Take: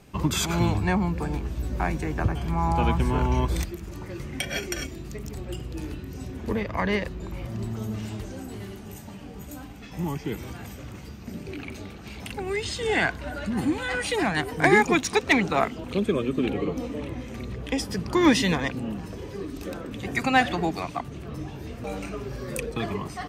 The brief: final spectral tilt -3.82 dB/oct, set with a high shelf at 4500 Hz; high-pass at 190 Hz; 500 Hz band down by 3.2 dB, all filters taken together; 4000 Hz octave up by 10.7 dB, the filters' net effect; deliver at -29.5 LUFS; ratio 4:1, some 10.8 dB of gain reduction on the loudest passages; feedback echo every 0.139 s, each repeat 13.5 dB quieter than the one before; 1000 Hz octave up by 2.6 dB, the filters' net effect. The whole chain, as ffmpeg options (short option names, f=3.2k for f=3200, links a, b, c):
-af "highpass=190,equalizer=f=500:t=o:g=-5.5,equalizer=f=1k:t=o:g=4.5,equalizer=f=4k:t=o:g=9,highshelf=f=4.5k:g=8.5,acompressor=threshold=-25dB:ratio=4,aecho=1:1:139|278:0.211|0.0444,volume=1dB"